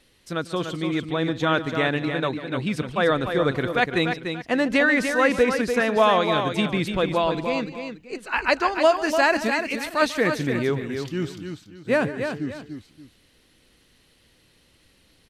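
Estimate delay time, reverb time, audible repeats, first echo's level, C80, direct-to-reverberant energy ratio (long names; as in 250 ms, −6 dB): 144 ms, no reverb audible, 3, −16.5 dB, no reverb audible, no reverb audible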